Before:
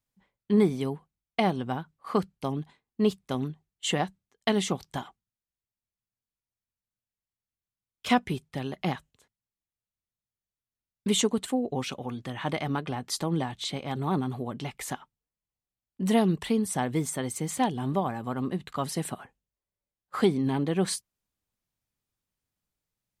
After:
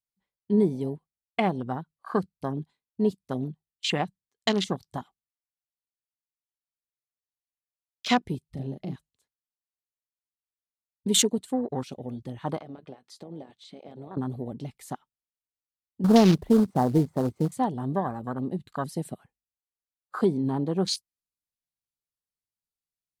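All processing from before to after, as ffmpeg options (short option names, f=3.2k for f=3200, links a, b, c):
-filter_complex "[0:a]asettb=1/sr,asplit=3[a][b][c];[a]atrim=end=8.494[d];[b]atrim=start=8.49:end=8.94,asetpts=PTS-STARTPTS,afade=t=in:d=0.004:c=qsin,afade=t=out:st=0.446:d=0.004:c=qsin,lowshelf=f=210:g=9.5,acompressor=threshold=-35dB:ratio=2.5:attack=3.2:release=140:knee=1:detection=peak,asplit=2[e][f];[f]adelay=37,volume=-3dB[g];[e][g]amix=inputs=2:normalize=0,atrim=end_sample=19845[h];[c]atrim=start=8.936[i];[d][h]acrossfade=d=0.004:c1=hsin:c2=qsin[j];[j][i]acrossfade=d=0.004:c1=qsin:c2=hsin,asettb=1/sr,asplit=3[k][l][m];[k]atrim=end=12.584[n];[l]atrim=start=12.58:end=14.17,asetpts=PTS-STARTPTS,afade=t=in:d=0.004:c=qsin,afade=t=out:st=1.586:d=0.004:c=qsin,highpass=f=510:p=1,aemphasis=mode=reproduction:type=50fm,acompressor=threshold=-35dB:ratio=4:attack=3.2:release=140:knee=1:detection=peak[o];[m]atrim=start=14.166[p];[n][o]acrossfade=d=0.004:c1=hsin:c2=qsin[q];[q][p]acrossfade=d=0.004:c1=qsin:c2=hsin,asettb=1/sr,asplit=3[r][s][t];[r]atrim=end=16.044[u];[s]atrim=start=16.04:end=17.52,asetpts=PTS-STARTPTS,afade=t=in:d=0.004:c=qsin,afade=t=out:st=1.476:d=0.004:c=qsin,lowpass=1k,acrusher=bits=3:mode=log:mix=0:aa=0.000001,acontrast=58[v];[t]atrim=start=17.516[w];[u][v]acrossfade=d=0.004:c1=hsin:c2=qsin[x];[x][w]acrossfade=d=0.004:c1=qsin:c2=hsin,equalizer=f=4.4k:w=1.9:g=6,afwtdn=0.0224,equalizer=f=11k:w=0.6:g=9"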